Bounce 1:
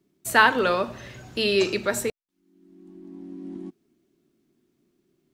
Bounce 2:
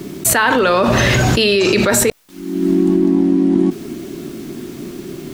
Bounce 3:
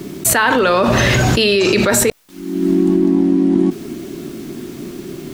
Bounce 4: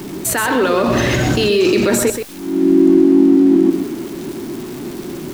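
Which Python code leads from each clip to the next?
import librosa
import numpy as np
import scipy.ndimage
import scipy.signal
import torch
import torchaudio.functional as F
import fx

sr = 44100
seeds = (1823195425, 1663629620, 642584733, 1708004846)

y1 = fx.env_flatten(x, sr, amount_pct=100)
y2 = y1
y3 = y2 + 0.5 * 10.0 ** (-23.0 / 20.0) * np.sign(y2)
y3 = y3 + 10.0 ** (-6.5 / 20.0) * np.pad(y3, (int(127 * sr / 1000.0), 0))[:len(y3)]
y3 = fx.dynamic_eq(y3, sr, hz=320.0, q=1.6, threshold_db=-25.0, ratio=4.0, max_db=8)
y3 = F.gain(torch.from_numpy(y3), -6.0).numpy()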